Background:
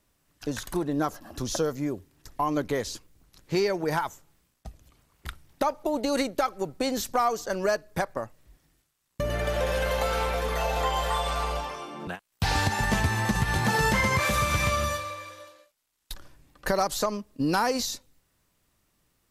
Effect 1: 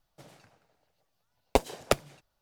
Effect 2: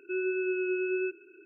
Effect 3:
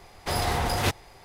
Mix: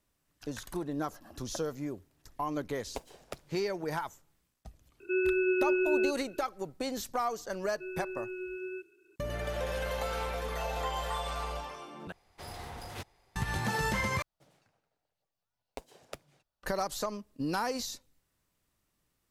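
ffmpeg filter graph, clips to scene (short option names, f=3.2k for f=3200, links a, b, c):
-filter_complex "[1:a]asplit=2[a][b];[2:a]asplit=2[c][d];[0:a]volume=-7.5dB[e];[a]alimiter=limit=-10dB:level=0:latency=1:release=200[f];[c]acontrast=35[g];[b]acompressor=threshold=-34dB:ratio=2:attack=23:release=199:knee=1:detection=rms[h];[e]asplit=3[i][j][k];[i]atrim=end=12.124[l];[3:a]atrim=end=1.24,asetpts=PTS-STARTPTS,volume=-17.5dB[m];[j]atrim=start=13.356:end=14.224[n];[h]atrim=end=2.41,asetpts=PTS-STARTPTS,volume=-12dB[o];[k]atrim=start=16.626[p];[f]atrim=end=2.41,asetpts=PTS-STARTPTS,volume=-11dB,afade=t=in:d=0.004:c=hsin,afade=t=out:st=2.406:d=0.004:c=hsin,adelay=1410[q];[g]atrim=end=1.45,asetpts=PTS-STARTPTS,volume=-3dB,afade=t=in:d=0.004:c=hsin,afade=t=out:st=1.446:d=0.004:c=hsin,adelay=5000[r];[d]atrim=end=1.45,asetpts=PTS-STARTPTS,volume=-9.5dB,afade=t=in:d=0.004:c=hsin,afade=t=out:st=1.446:d=0.004:c=hsin,adelay=7710[s];[l][m]acrossfade=d=0.004:c1=hsin:c2=hsin[t];[t][n]acrossfade=d=0.004:c1=hsin:c2=hsin[u];[u][o]acrossfade=d=0.004:c1=hsin:c2=hsin[v];[v][p]acrossfade=d=0.004:c1=hsin:c2=hsin[w];[w][q][r][s]amix=inputs=4:normalize=0"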